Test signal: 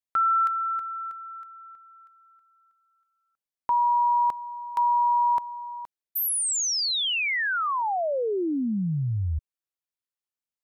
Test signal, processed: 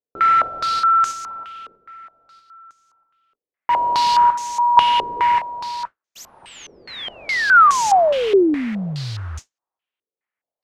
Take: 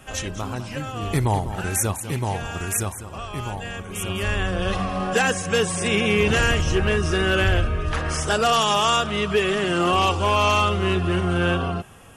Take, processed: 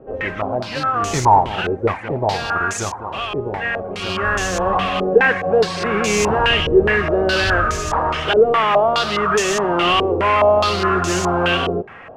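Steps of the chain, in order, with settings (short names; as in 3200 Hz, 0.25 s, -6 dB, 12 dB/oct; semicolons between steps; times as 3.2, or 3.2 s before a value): overdrive pedal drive 16 dB, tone 1300 Hz, clips at -10.5 dBFS; modulation noise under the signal 10 dB; stepped low-pass 4.8 Hz 440–6500 Hz; gain +1 dB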